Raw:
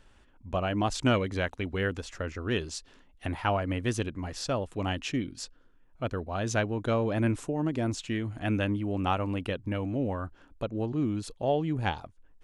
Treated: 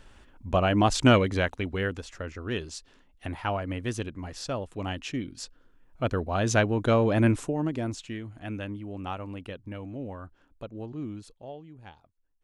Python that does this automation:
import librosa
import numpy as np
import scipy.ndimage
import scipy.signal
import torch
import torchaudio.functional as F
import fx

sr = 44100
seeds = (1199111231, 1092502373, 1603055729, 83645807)

y = fx.gain(x, sr, db=fx.line((1.15, 6.0), (2.12, -2.0), (5.13, -2.0), (6.13, 5.0), (7.27, 5.0), (8.31, -7.0), (11.12, -7.0), (11.69, -18.5)))